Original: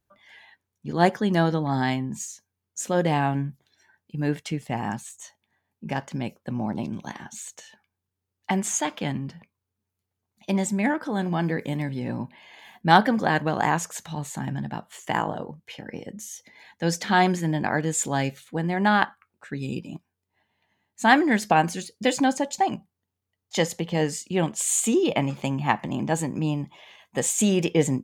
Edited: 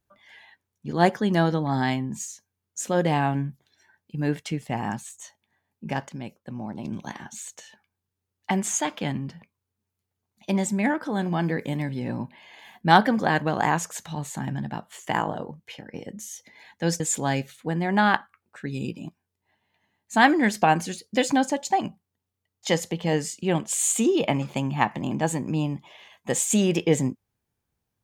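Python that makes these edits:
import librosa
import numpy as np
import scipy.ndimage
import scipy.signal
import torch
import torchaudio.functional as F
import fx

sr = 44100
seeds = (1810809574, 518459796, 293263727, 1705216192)

y = fx.edit(x, sr, fx.clip_gain(start_s=6.09, length_s=0.76, db=-6.0),
    fx.fade_out_to(start_s=15.65, length_s=0.29, curve='qsin', floor_db=-9.5),
    fx.cut(start_s=17.0, length_s=0.88), tone=tone)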